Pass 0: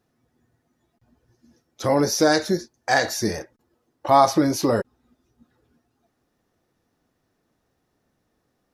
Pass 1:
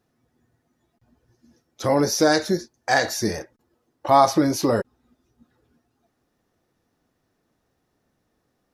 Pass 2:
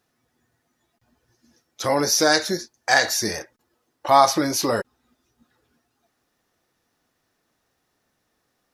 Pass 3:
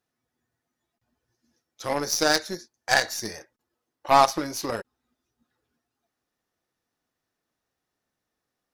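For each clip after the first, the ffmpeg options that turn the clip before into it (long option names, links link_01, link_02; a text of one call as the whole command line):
ffmpeg -i in.wav -af anull out.wav
ffmpeg -i in.wav -af "tiltshelf=frequency=730:gain=-5.5" out.wav
ffmpeg -i in.wav -af "aeval=exprs='0.841*(cos(1*acos(clip(val(0)/0.841,-1,1)))-cos(1*PI/2))+0.0106*(cos(5*acos(clip(val(0)/0.841,-1,1)))-cos(5*PI/2))+0.0133*(cos(6*acos(clip(val(0)/0.841,-1,1)))-cos(6*PI/2))+0.0841*(cos(7*acos(clip(val(0)/0.841,-1,1)))-cos(7*PI/2))':channel_layout=same,volume=-2dB" out.wav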